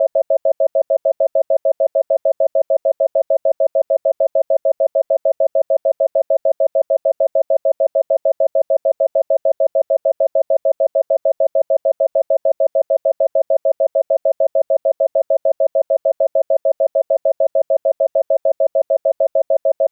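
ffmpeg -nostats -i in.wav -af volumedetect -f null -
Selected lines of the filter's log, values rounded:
mean_volume: -16.7 dB
max_volume: -6.9 dB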